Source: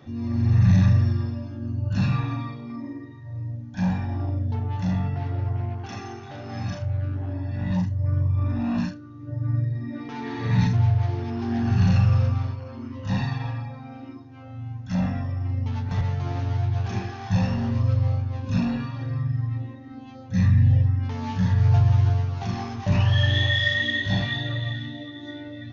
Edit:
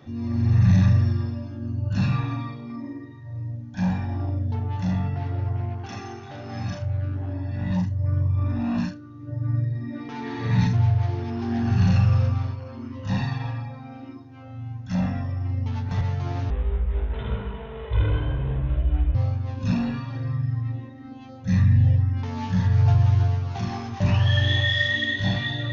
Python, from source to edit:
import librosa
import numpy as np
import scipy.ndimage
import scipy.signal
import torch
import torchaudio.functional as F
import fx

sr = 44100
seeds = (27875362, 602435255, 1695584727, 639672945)

y = fx.edit(x, sr, fx.speed_span(start_s=16.5, length_s=1.51, speed=0.57), tone=tone)